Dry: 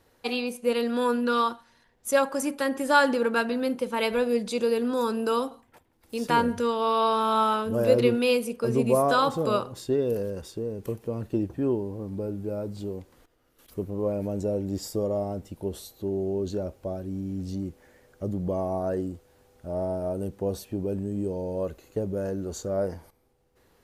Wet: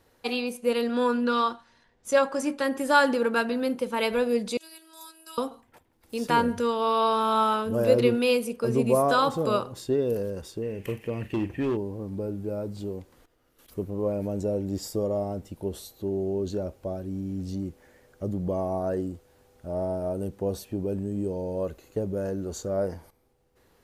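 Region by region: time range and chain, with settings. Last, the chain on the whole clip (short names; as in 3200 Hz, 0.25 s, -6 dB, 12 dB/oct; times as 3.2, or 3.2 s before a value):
0.87–2.64 LPF 7400 Hz + doubler 20 ms -12.5 dB
4.57–5.38 differentiator + robotiser 322 Hz
10.62–11.77 band shelf 2300 Hz +15 dB 1 oct + overloaded stage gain 22.5 dB + doubler 41 ms -13.5 dB
whole clip: dry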